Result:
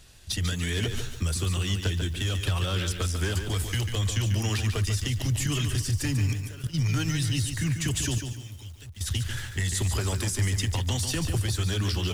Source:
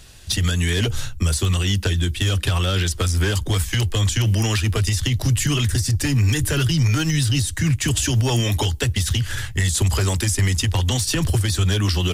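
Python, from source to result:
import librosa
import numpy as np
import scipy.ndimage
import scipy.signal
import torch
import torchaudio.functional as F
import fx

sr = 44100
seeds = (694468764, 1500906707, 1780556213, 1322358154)

y = fx.level_steps(x, sr, step_db=18, at=(6.26, 6.73), fade=0.02)
y = fx.tone_stack(y, sr, knobs='6-0-2', at=(8.18, 9.01))
y = fx.echo_crushed(y, sr, ms=144, feedback_pct=35, bits=7, wet_db=-7.0)
y = F.gain(torch.from_numpy(y), -8.0).numpy()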